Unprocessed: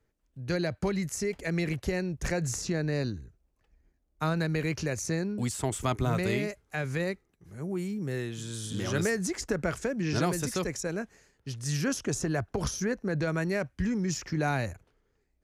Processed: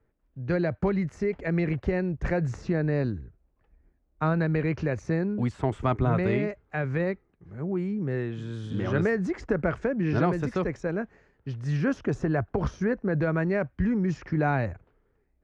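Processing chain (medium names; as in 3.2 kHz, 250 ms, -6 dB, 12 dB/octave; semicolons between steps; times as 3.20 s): low-pass 1.8 kHz 12 dB/octave; trim +4 dB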